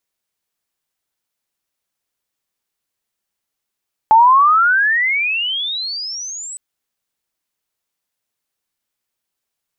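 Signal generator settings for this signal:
glide logarithmic 860 Hz → 8,100 Hz −5 dBFS → −27 dBFS 2.46 s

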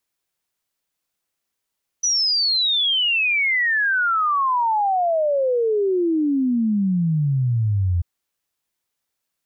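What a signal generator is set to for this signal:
exponential sine sweep 6,000 Hz → 84 Hz 5.99 s −16.5 dBFS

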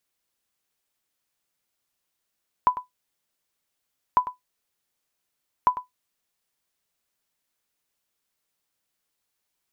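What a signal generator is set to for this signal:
ping with an echo 998 Hz, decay 0.14 s, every 1.50 s, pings 3, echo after 0.10 s, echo −13.5 dB −9 dBFS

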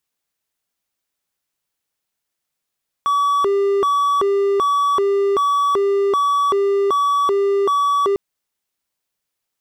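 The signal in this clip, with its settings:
siren hi-lo 398–1,140 Hz 1.3 per second triangle −12 dBFS 5.10 s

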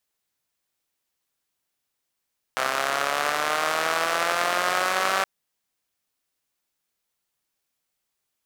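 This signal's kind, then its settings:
pulse-train model of a four-cylinder engine, changing speed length 2.67 s, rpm 3,900, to 5,800, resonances 690/1,200 Hz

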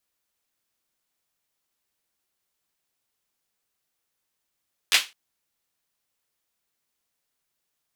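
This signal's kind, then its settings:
synth clap length 0.21 s, bursts 3, apart 11 ms, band 2,800 Hz, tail 0.24 s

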